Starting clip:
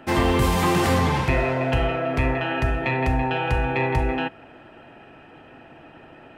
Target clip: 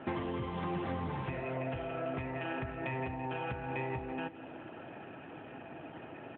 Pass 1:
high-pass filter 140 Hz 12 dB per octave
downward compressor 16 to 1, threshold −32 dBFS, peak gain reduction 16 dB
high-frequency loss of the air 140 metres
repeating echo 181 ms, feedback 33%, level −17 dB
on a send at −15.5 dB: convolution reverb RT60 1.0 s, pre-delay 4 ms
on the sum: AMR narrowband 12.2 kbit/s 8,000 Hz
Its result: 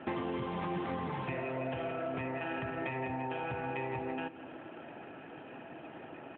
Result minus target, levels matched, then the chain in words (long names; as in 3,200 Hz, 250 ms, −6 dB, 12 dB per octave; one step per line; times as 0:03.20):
125 Hz band −3.0 dB
downward compressor 16 to 1, threshold −32 dBFS, peak gain reduction 17 dB
high-frequency loss of the air 140 metres
repeating echo 181 ms, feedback 33%, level −17 dB
on a send at −15.5 dB: convolution reverb RT60 1.0 s, pre-delay 4 ms
on the sum: AMR narrowband 12.2 kbit/s 8,000 Hz